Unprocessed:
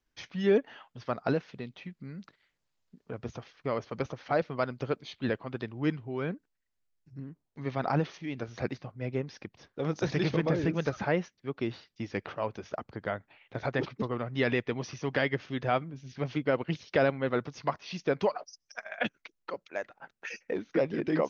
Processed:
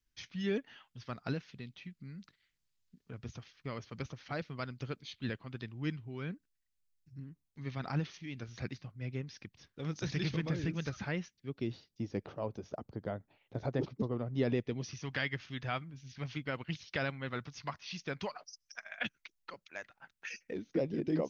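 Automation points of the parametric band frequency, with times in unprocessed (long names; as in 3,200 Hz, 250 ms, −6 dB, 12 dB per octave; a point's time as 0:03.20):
parametric band −14.5 dB 2.6 octaves
0:11.21 630 Hz
0:12.03 1,900 Hz
0:14.52 1,900 Hz
0:15.10 480 Hz
0:20.27 480 Hz
0:20.71 1,400 Hz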